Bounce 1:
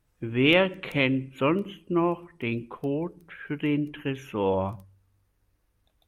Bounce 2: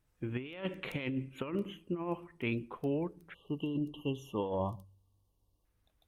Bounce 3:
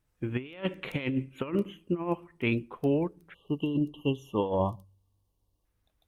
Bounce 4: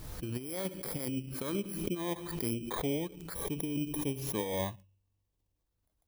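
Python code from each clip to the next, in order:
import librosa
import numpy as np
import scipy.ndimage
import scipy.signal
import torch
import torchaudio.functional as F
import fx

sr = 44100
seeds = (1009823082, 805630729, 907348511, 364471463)

y1 = fx.spec_erase(x, sr, start_s=3.34, length_s=2.31, low_hz=1200.0, high_hz=2700.0)
y1 = fx.over_compress(y1, sr, threshold_db=-26.0, ratio=-0.5)
y1 = y1 * 10.0 ** (-7.5 / 20.0)
y2 = fx.upward_expand(y1, sr, threshold_db=-46.0, expansion=1.5)
y2 = y2 * 10.0 ** (7.5 / 20.0)
y3 = fx.bit_reversed(y2, sr, seeds[0], block=16)
y3 = fx.pre_swell(y3, sr, db_per_s=42.0)
y3 = y3 * 10.0 ** (-7.0 / 20.0)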